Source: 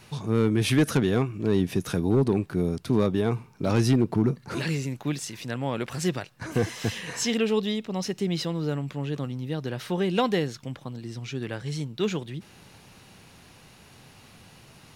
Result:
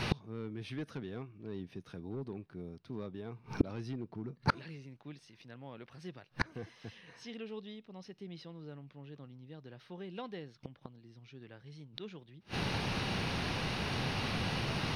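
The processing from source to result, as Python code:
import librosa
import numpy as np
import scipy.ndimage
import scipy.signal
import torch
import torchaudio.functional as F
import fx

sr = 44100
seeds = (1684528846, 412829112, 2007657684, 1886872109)

y = fx.gate_flip(x, sr, shuts_db=-30.0, range_db=-36)
y = scipy.signal.savgol_filter(y, 15, 4, mode='constant')
y = y * 10.0 ** (16.5 / 20.0)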